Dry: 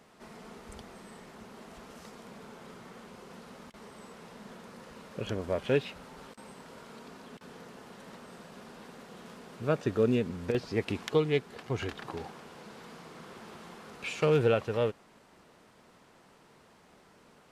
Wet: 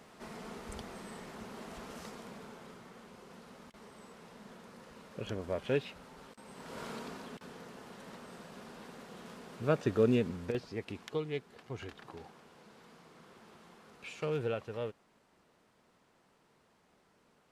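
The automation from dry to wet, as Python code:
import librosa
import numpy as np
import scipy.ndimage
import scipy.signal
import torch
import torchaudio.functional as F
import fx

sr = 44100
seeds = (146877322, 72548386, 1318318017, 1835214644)

y = fx.gain(x, sr, db=fx.line((2.01, 2.5), (2.89, -4.5), (6.44, -4.5), (6.84, 7.0), (7.54, -1.0), (10.27, -1.0), (10.79, -9.5)))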